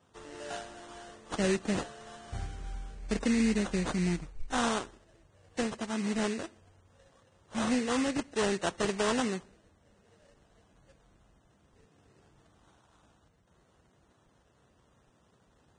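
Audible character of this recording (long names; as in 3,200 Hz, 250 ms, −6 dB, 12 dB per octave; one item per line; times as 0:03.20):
aliases and images of a low sample rate 2,300 Hz, jitter 20%
Ogg Vorbis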